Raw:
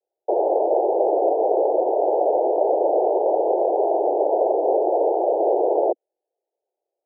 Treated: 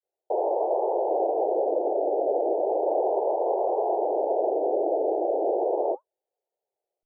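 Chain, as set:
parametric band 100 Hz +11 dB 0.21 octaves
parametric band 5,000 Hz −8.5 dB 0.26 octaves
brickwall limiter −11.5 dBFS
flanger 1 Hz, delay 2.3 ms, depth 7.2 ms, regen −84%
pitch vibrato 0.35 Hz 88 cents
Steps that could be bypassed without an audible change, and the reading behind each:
parametric band 100 Hz: nothing at its input below 270 Hz
parametric band 5,000 Hz: nothing at its input above 1,000 Hz

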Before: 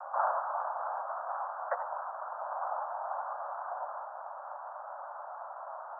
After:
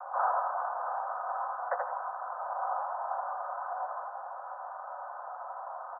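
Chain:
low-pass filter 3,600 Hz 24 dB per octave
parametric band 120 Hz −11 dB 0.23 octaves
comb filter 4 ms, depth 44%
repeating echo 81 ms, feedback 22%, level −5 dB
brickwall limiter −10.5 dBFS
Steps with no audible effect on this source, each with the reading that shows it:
low-pass filter 3,600 Hz: nothing at its input above 1,900 Hz
parametric band 120 Hz: nothing at its input below 450 Hz
brickwall limiter −10.5 dBFS: peak of its input −17.0 dBFS

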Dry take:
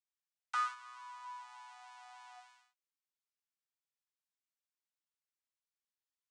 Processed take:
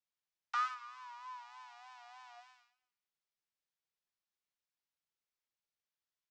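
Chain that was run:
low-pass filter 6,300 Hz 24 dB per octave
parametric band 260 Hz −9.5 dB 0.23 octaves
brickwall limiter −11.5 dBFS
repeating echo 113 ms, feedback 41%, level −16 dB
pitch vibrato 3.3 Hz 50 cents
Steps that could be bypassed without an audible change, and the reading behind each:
parametric band 260 Hz: nothing at its input below 720 Hz
brickwall limiter −11.5 dBFS: peak of its input −25.0 dBFS

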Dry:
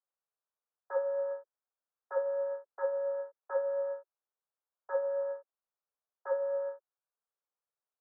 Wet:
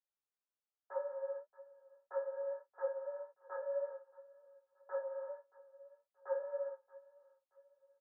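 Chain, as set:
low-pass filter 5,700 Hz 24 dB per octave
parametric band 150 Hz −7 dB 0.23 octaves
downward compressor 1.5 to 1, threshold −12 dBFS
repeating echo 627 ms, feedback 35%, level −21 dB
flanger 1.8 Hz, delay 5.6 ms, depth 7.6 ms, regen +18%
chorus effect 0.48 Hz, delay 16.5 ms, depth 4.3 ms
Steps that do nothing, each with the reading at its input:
low-pass filter 5,700 Hz: nothing at its input above 1,700 Hz
parametric band 150 Hz: nothing at its input below 450 Hz
downward compressor, threshold −12 dBFS: peak of its input −21.5 dBFS

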